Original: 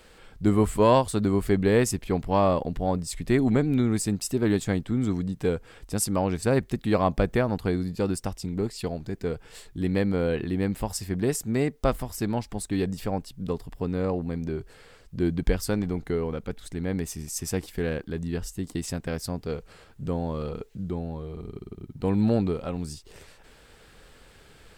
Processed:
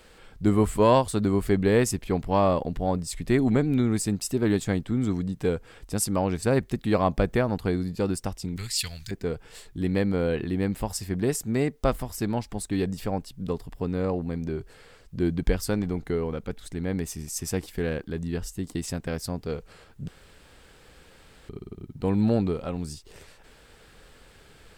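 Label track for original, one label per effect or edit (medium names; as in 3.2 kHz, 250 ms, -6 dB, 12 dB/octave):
8.560000	9.110000	FFT filter 100 Hz 0 dB, 320 Hz -22 dB, 720 Hz -15 dB, 1.9 kHz +8 dB, 5.9 kHz +14 dB
20.080000	21.490000	room tone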